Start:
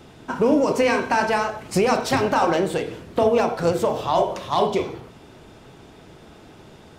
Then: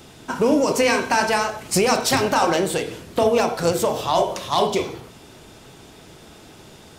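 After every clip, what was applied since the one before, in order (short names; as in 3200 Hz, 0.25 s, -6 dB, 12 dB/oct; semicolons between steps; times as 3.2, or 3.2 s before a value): high shelf 3800 Hz +12 dB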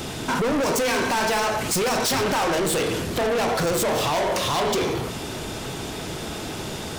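in parallel at 0 dB: compressor, threshold -29 dBFS, peak gain reduction 15 dB; on the sum: limiter -11 dBFS, peak gain reduction 7.5 dB; soft clip -28.5 dBFS, distortion -5 dB; gain +8 dB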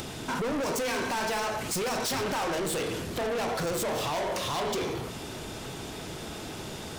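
upward compressor, threshold -29 dBFS; gain -7.5 dB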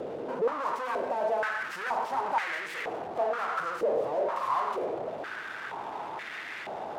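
tracing distortion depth 0.38 ms; in parallel at -4 dB: Schmitt trigger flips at -49.5 dBFS; on the sum: stepped band-pass 2.1 Hz 510–1900 Hz; gain +5.5 dB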